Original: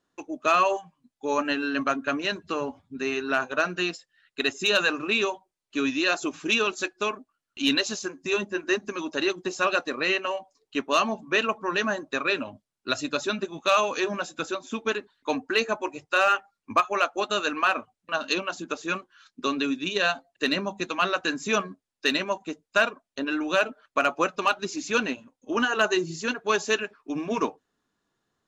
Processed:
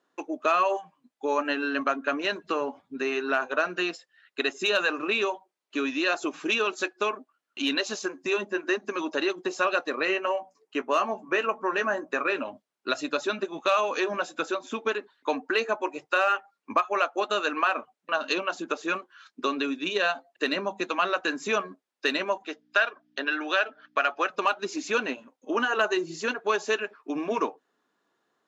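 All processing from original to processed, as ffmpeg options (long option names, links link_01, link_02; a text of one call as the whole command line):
ffmpeg -i in.wav -filter_complex "[0:a]asettb=1/sr,asplit=3[link_01][link_02][link_03];[link_01]atrim=end=10.054[link_04];[link_02]atrim=start=10.05:end=12.36,asetpts=PTS-STARTPTS,afade=type=in:duration=0.004:curve=qsin,afade=type=out:start_time=2.306:duration=0.004:curve=qsin,equalizer=frequency=3800:width_type=o:width=0.59:gain=-9.5,bandreject=frequency=60:width_type=h:width=6,bandreject=frequency=120:width_type=h:width=6,bandreject=frequency=180:width_type=h:width=6,bandreject=frequency=240:width_type=h:width=6,asplit=2[link_05][link_06];[link_06]adelay=16,volume=-11dB[link_07];[link_05][link_07]amix=inputs=2:normalize=0,atrim=end_sample=101871[link_08];[link_03]atrim=start=12.356[link_09];[link_04][link_08]acrossfade=duration=0.004:curve1=hsin:curve2=qsin[link_10];[link_10][link_09]acrossfade=duration=0.004:curve1=qsin:curve2=hsin,asettb=1/sr,asplit=3[link_11][link_12][link_13];[link_11]atrim=end=22.434[link_14];[link_12]atrim=start=22.43:end=24.3,asetpts=PTS-STARTPTS,afade=type=in:duration=0.004:curve=qsin,afade=type=out:start_time=1.866:duration=0.004:curve=qsin,aeval=exprs='val(0)+0.00447*(sin(2*PI*60*n/s)+sin(2*PI*2*60*n/s)/2+sin(2*PI*3*60*n/s)/3+sin(2*PI*4*60*n/s)/4+sin(2*PI*5*60*n/s)/5)':channel_layout=same,highpass=430,equalizer=frequency=530:width_type=q:width=4:gain=-5,equalizer=frequency=1000:width_type=q:width=4:gain=-5,equalizer=frequency=1700:width_type=q:width=4:gain=6,equalizer=frequency=3300:width_type=q:width=4:gain=5,equalizer=frequency=5000:width_type=q:width=4:gain=4,lowpass=frequency=6100:width=0.5412,lowpass=frequency=6100:width=1.3066[link_15];[link_13]atrim=start=24.296[link_16];[link_14][link_15]acrossfade=duration=0.004:curve1=hsin:curve2=qsin[link_17];[link_17][link_16]acrossfade=duration=0.004:curve1=qsin:curve2=hsin,highshelf=frequency=3700:gain=-10,acompressor=threshold=-31dB:ratio=2,highpass=330,volume=6dB" out.wav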